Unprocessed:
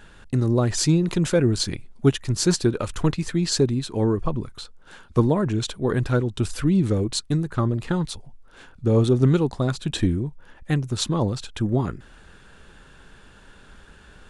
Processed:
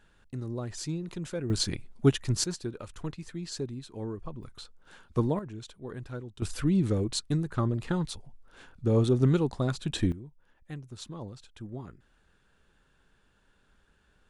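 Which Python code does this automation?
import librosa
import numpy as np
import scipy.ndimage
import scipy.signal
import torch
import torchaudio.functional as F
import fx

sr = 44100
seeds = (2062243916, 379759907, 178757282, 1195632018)

y = fx.gain(x, sr, db=fx.steps((0.0, -15.0), (1.5, -4.0), (2.44, -15.0), (4.43, -8.0), (5.39, -17.5), (6.42, -5.5), (10.12, -18.0)))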